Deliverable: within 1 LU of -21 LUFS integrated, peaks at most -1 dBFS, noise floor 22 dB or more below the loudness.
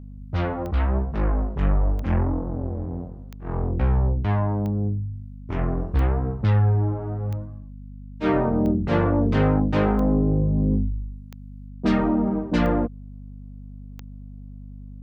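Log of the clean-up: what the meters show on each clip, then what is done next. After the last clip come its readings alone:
clicks 11; hum 50 Hz; harmonics up to 250 Hz; hum level -34 dBFS; loudness -23.5 LUFS; peak -9.5 dBFS; loudness target -21.0 LUFS
-> de-click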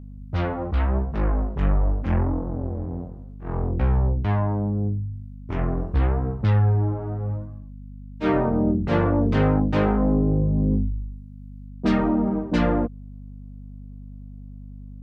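clicks 0; hum 50 Hz; harmonics up to 250 Hz; hum level -34 dBFS
-> de-hum 50 Hz, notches 5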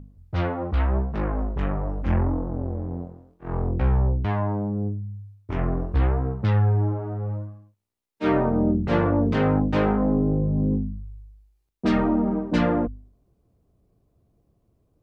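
hum none; loudness -24.5 LUFS; peak -10.0 dBFS; loudness target -21.0 LUFS
-> gain +3.5 dB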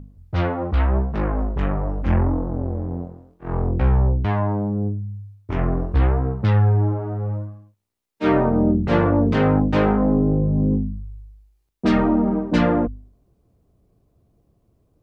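loudness -21.0 LUFS; peak -6.5 dBFS; noise floor -66 dBFS

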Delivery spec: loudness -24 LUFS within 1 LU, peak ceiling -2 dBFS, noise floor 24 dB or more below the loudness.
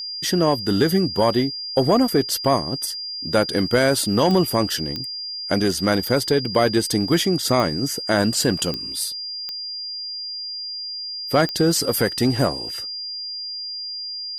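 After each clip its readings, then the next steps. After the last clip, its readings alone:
clicks 7; steady tone 4800 Hz; tone level -28 dBFS; loudness -21.5 LUFS; peak -6.5 dBFS; loudness target -24.0 LUFS
-> de-click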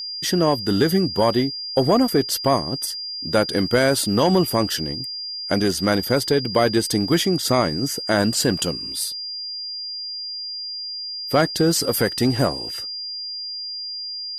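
clicks 0; steady tone 4800 Hz; tone level -28 dBFS
-> notch 4800 Hz, Q 30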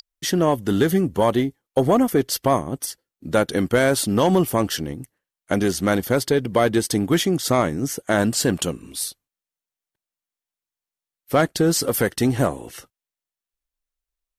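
steady tone none; loudness -21.0 LUFS; peak -7.0 dBFS; loudness target -24.0 LUFS
-> gain -3 dB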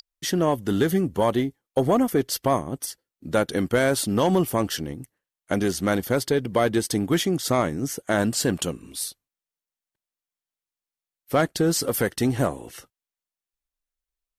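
loudness -24.0 LUFS; peak -10.0 dBFS; noise floor -92 dBFS

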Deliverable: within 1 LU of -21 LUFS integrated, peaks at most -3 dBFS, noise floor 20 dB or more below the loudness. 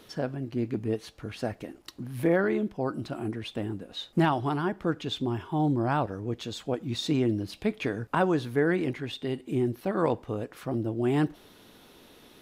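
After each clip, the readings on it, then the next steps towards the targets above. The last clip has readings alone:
loudness -29.5 LUFS; peak -13.5 dBFS; loudness target -21.0 LUFS
-> gain +8.5 dB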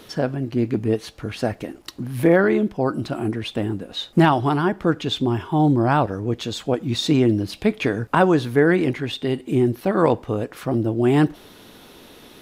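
loudness -21.0 LUFS; peak -5.0 dBFS; noise floor -47 dBFS

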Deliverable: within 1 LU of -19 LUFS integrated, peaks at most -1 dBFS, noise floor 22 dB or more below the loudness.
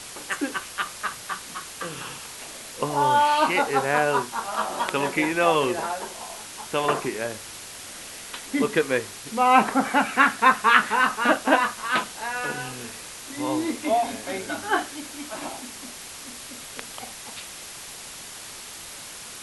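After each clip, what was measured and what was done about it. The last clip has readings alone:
noise floor -40 dBFS; noise floor target -46 dBFS; loudness -23.5 LUFS; peak -1.5 dBFS; loudness target -19.0 LUFS
-> denoiser 6 dB, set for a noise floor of -40 dBFS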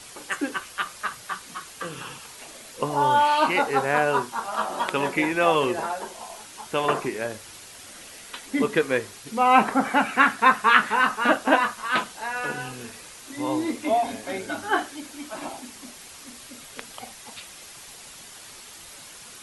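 noise floor -44 dBFS; noise floor target -46 dBFS
-> denoiser 6 dB, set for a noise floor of -44 dBFS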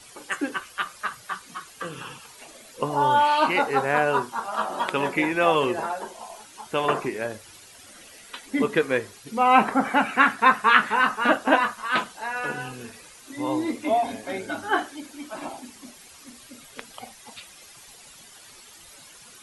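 noise floor -48 dBFS; loudness -23.5 LUFS; peak -1.5 dBFS; loudness target -19.0 LUFS
-> gain +4.5 dB; limiter -1 dBFS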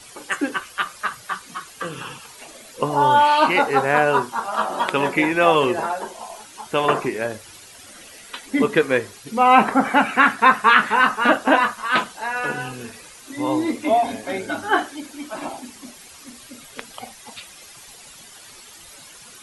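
loudness -19.5 LUFS; peak -1.0 dBFS; noise floor -44 dBFS

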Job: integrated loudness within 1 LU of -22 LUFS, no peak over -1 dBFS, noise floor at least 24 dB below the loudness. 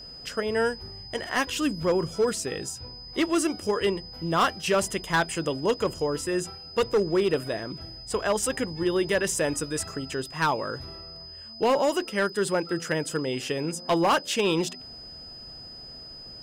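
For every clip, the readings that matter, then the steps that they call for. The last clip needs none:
clipped 0.9%; flat tops at -17.0 dBFS; steady tone 5000 Hz; tone level -41 dBFS; loudness -27.0 LUFS; peak -17.0 dBFS; loudness target -22.0 LUFS
-> clip repair -17 dBFS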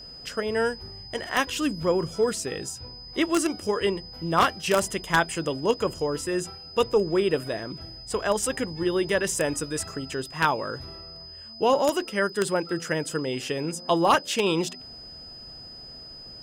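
clipped 0.0%; steady tone 5000 Hz; tone level -41 dBFS
-> notch 5000 Hz, Q 30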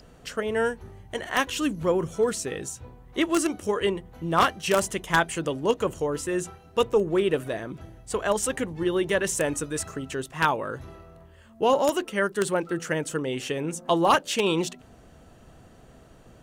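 steady tone none; loudness -26.0 LUFS; peak -8.0 dBFS; loudness target -22.0 LUFS
-> gain +4 dB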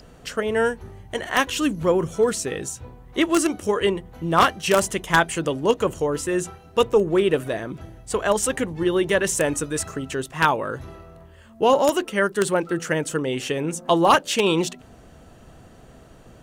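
loudness -22.0 LUFS; peak -4.0 dBFS; noise floor -48 dBFS

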